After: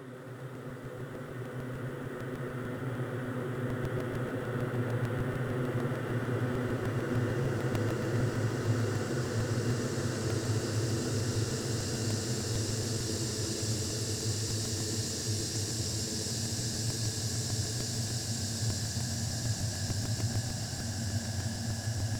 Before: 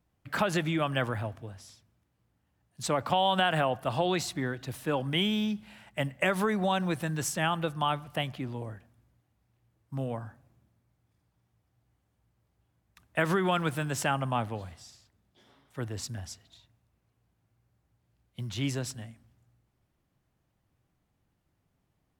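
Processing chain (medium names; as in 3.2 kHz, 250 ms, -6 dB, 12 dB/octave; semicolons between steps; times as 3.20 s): Paulstretch 40×, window 0.50 s, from 15.64 s; crackling interface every 0.15 s, samples 128, repeat, from 0.40 s; bit-crushed delay 135 ms, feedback 80%, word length 10-bit, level -10 dB; trim +3.5 dB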